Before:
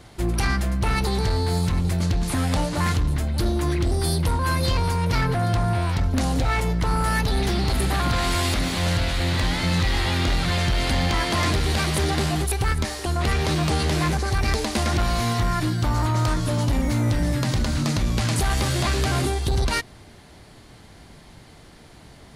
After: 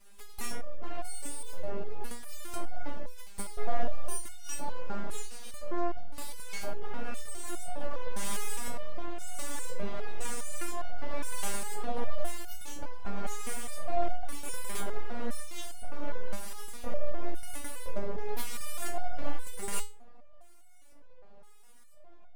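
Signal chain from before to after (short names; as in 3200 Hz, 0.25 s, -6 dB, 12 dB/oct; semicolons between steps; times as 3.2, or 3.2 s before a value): LFO band-pass square 0.98 Hz 340–5000 Hz; full-wave rectifier; stepped resonator 4.9 Hz 200–720 Hz; gain +14.5 dB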